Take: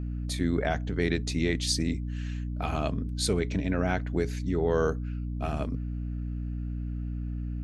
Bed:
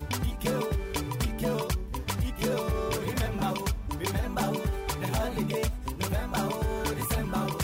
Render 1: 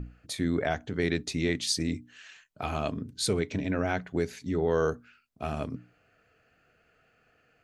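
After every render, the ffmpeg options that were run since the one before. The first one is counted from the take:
-af "bandreject=f=60:t=h:w=6,bandreject=f=120:t=h:w=6,bandreject=f=180:t=h:w=6,bandreject=f=240:t=h:w=6,bandreject=f=300:t=h:w=6"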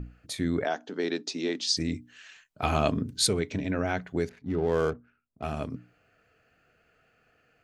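-filter_complex "[0:a]asettb=1/sr,asplit=3[s0][s1][s2];[s0]atrim=end=0.654[s3];[s1]atrim=start=0.65:end=1.77,asetpts=PTS-STARTPTS,afade=t=in:d=0.004:c=qsin,afade=t=out:st=1.116:d=0.004:c=qsin,highpass=f=240:w=0.5412,highpass=f=240:w=1.3066,equalizer=f=890:t=q:w=4:g=3,equalizer=f=2100:t=q:w=4:g=-8,equalizer=f=5100:t=q:w=4:g=5,lowpass=f=7100:w=0.5412,lowpass=f=7100:w=1.3066[s4];[s2]atrim=start=1.766[s5];[s3][s4]acrossfade=d=0.004:c1=hsin:c2=qsin[s6];[s6][s5]acrossfade=d=0.004:c1=qsin:c2=hsin,asettb=1/sr,asplit=3[s7][s8][s9];[s7]atrim=end=4.294[s10];[s8]atrim=start=4.29:end=5.43,asetpts=PTS-STARTPTS,afade=t=in:d=0.004:c=qsin,afade=t=out:st=1.136:d=0.004:c=qsin,adynamicsmooth=sensitivity=7.5:basefreq=880[s11];[s9]atrim=start=5.426[s12];[s10][s11]acrossfade=d=0.004:c1=hsin:c2=qsin[s13];[s13][s12]acrossfade=d=0.004:c1=qsin:c2=hsin,asplit=3[s14][s15][s16];[s14]atrim=end=2.632[s17];[s15]atrim=start=2.628:end=3.272,asetpts=PTS-STARTPTS,volume=2[s18];[s16]atrim=start=3.268[s19];[s17][s18]acrossfade=d=0.004:c1=hsin:c2=hsin[s20];[s20][s19]acrossfade=d=0.004:c1=hsin:c2=hsin"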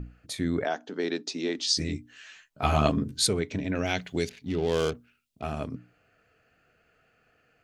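-filter_complex "[0:a]asettb=1/sr,asplit=3[s0][s1][s2];[s0]atrim=end=1.574[s3];[s1]atrim=start=1.57:end=3.2,asetpts=PTS-STARTPTS,afade=t=in:d=0.004:c=qsin,afade=t=out:st=1.626:d=0.004:c=qsin,asplit=2[s4][s5];[s5]adelay=14,volume=0.708[s6];[s4][s6]amix=inputs=2:normalize=0,atrim=end_sample=71883[s7];[s2]atrim=start=3.196[s8];[s3][s7]acrossfade=d=0.004:c1=hsin:c2=qsin[s9];[s9][s8]acrossfade=d=0.004:c1=qsin:c2=hsin,asettb=1/sr,asplit=3[s10][s11][s12];[s10]atrim=end=3.754[s13];[s11]atrim=start=3.75:end=5.42,asetpts=PTS-STARTPTS,afade=t=in:d=0.004:c=qsin,afade=t=out:st=1.666:d=0.004:c=qsin,highshelf=f=2100:t=q:w=1.5:g=10.5[s14];[s12]atrim=start=5.416[s15];[s13][s14]acrossfade=d=0.004:c1=hsin:c2=qsin[s16];[s16][s15]acrossfade=d=0.004:c1=qsin:c2=hsin"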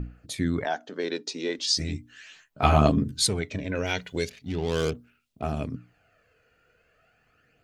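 -af "aphaser=in_gain=1:out_gain=1:delay=2.1:decay=0.44:speed=0.38:type=sinusoidal"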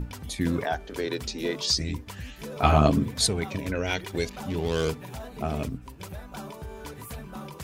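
-filter_complex "[1:a]volume=0.316[s0];[0:a][s0]amix=inputs=2:normalize=0"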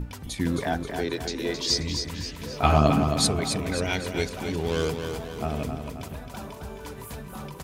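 -af "aecho=1:1:266|532|798|1064|1330|1596:0.473|0.232|0.114|0.0557|0.0273|0.0134"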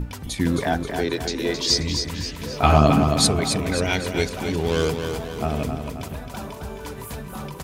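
-af "volume=1.68,alimiter=limit=0.794:level=0:latency=1"

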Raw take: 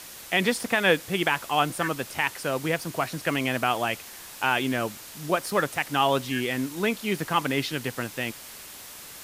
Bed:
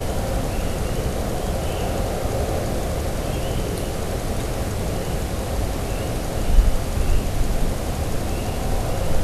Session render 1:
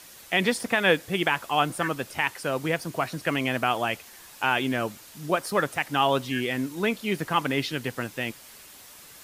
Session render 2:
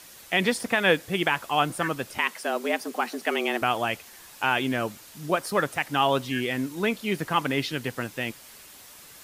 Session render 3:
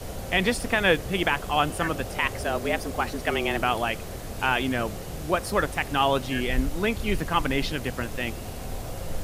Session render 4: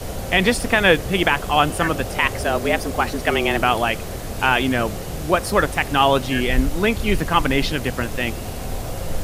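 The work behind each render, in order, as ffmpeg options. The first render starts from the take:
-af "afftdn=nr=6:nf=-43"
-filter_complex "[0:a]asettb=1/sr,asplit=3[s0][s1][s2];[s0]atrim=end=2.184[s3];[s1]atrim=start=2.18:end=3.62,asetpts=PTS-STARTPTS,afade=t=in:d=0.004:c=qsin,afade=t=out:st=1.436:d=0.004:c=qsin,afreqshift=110[s4];[s2]atrim=start=3.616[s5];[s3][s4]acrossfade=d=0.004:c1=hsin:c2=qsin[s6];[s6][s5]acrossfade=d=0.004:c1=qsin:c2=hsin"
-filter_complex "[1:a]volume=0.266[s0];[0:a][s0]amix=inputs=2:normalize=0"
-af "volume=2.11,alimiter=limit=0.708:level=0:latency=1"

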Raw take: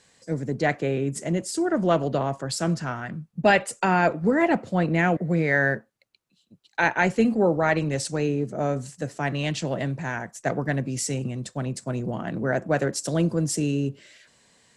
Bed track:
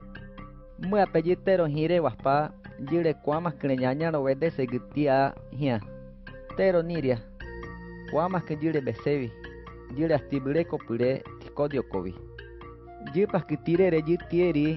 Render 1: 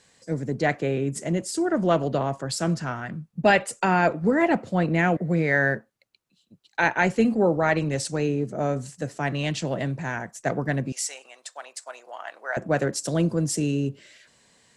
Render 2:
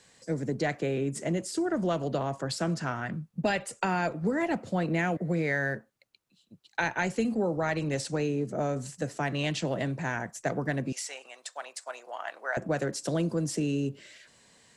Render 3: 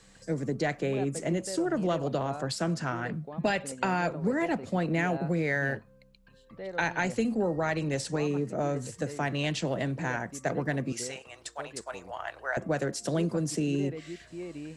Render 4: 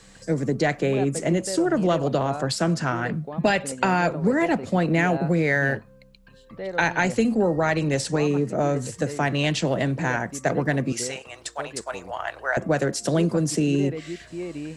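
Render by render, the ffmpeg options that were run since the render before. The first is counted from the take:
-filter_complex "[0:a]asettb=1/sr,asplit=3[s0][s1][s2];[s0]atrim=end=10.924[s3];[s1]atrim=start=10.92:end=12.57,asetpts=PTS-STARTPTS,afade=t=in:d=0.004:c=qsin,afade=t=out:st=1.646:d=0.004:c=qsin,highpass=f=710:w=0.5412,highpass=f=710:w=1.3066[s4];[s2]atrim=start=12.566[s5];[s3][s4]acrossfade=d=0.004:c1=hsin:c2=qsin[s6];[s6][s5]acrossfade=d=0.004:c1=qsin:c2=hsin"
-filter_complex "[0:a]acrossover=split=170|4000[s0][s1][s2];[s0]acompressor=threshold=0.0112:ratio=4[s3];[s1]acompressor=threshold=0.0447:ratio=4[s4];[s2]acompressor=threshold=0.0112:ratio=4[s5];[s3][s4][s5]amix=inputs=3:normalize=0"
-filter_complex "[1:a]volume=0.15[s0];[0:a][s0]amix=inputs=2:normalize=0"
-af "volume=2.24"

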